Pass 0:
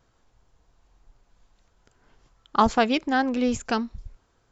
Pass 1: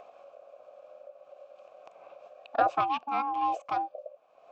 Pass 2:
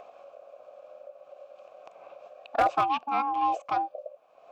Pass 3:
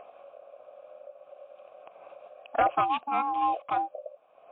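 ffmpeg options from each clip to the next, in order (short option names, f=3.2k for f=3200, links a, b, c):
-filter_complex "[0:a]aeval=exprs='val(0)*sin(2*PI*560*n/s)':c=same,asplit=3[a][b][c];[a]bandpass=f=730:t=q:w=8,volume=0dB[d];[b]bandpass=f=1.09k:t=q:w=8,volume=-6dB[e];[c]bandpass=f=2.44k:t=q:w=8,volume=-9dB[f];[d][e][f]amix=inputs=3:normalize=0,acompressor=mode=upward:threshold=-45dB:ratio=2.5,volume=8dB"
-af "asoftclip=type=hard:threshold=-19.5dB,volume=2.5dB"
-ar 8000 -c:a libmp3lame -b:a 40k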